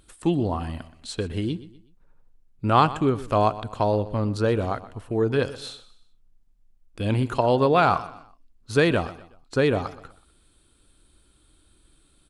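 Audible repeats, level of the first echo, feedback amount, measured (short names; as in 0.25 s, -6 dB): 3, -16.5 dB, 37%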